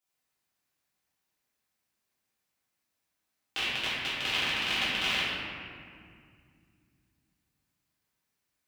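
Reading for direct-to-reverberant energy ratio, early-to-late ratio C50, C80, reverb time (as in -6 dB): -12.5 dB, -3.5 dB, -1.5 dB, 2.1 s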